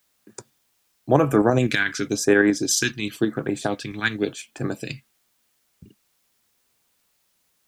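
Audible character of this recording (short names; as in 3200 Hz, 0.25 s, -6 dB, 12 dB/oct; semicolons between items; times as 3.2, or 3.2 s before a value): tremolo saw up 12 Hz, depth 45%; phasing stages 2, 0.94 Hz, lowest notch 560–3700 Hz; a quantiser's noise floor 12-bit, dither triangular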